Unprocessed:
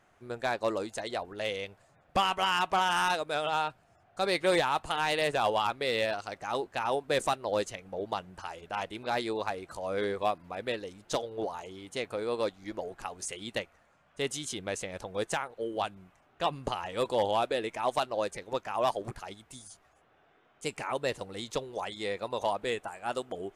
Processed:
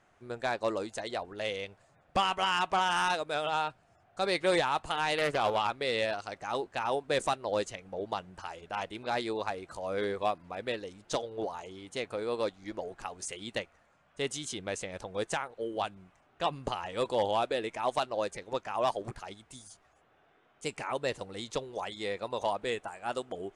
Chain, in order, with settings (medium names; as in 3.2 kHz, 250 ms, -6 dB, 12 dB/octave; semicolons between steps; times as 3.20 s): low-pass 9.9 kHz 24 dB/octave; 5.18–5.67 s: loudspeaker Doppler distortion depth 0.29 ms; trim -1 dB